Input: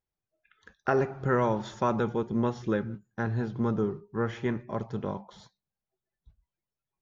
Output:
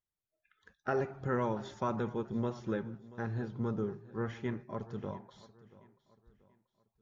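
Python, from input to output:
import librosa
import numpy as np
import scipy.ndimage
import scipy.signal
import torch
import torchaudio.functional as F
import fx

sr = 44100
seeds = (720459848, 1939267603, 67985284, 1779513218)

p1 = fx.spec_quant(x, sr, step_db=15)
p2 = p1 + fx.echo_feedback(p1, sr, ms=684, feedback_pct=39, wet_db=-19.5, dry=0)
y = p2 * 10.0 ** (-6.5 / 20.0)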